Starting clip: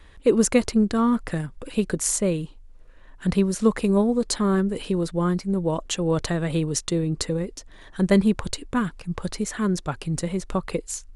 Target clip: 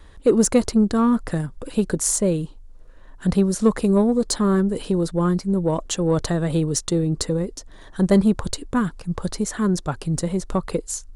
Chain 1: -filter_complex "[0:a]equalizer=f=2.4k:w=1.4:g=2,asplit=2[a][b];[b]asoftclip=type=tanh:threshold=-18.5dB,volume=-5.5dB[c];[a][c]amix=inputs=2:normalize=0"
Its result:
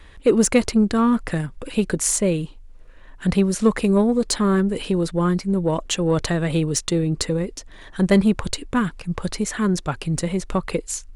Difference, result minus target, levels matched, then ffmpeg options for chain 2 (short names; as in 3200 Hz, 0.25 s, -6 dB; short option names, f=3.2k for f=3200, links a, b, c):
2000 Hz band +5.5 dB
-filter_complex "[0:a]equalizer=f=2.4k:w=1.4:g=-7.5,asplit=2[a][b];[b]asoftclip=type=tanh:threshold=-18.5dB,volume=-5.5dB[c];[a][c]amix=inputs=2:normalize=0"